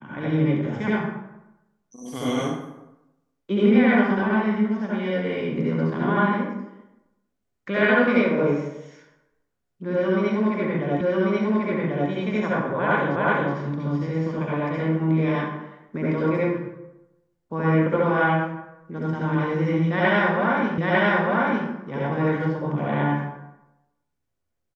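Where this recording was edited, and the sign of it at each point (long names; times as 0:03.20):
0:11.01: the same again, the last 1.09 s
0:13.16: the same again, the last 0.37 s
0:20.78: the same again, the last 0.9 s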